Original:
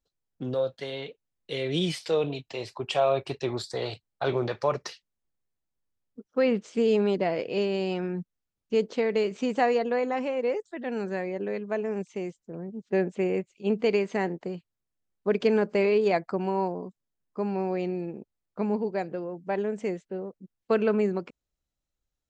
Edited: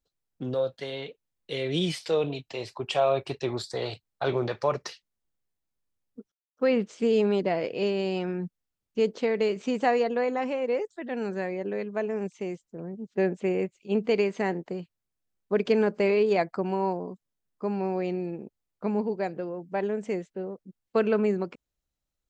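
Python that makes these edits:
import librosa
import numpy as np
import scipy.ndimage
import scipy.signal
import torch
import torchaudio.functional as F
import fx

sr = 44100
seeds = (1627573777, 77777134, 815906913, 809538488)

y = fx.edit(x, sr, fx.insert_silence(at_s=6.32, length_s=0.25), tone=tone)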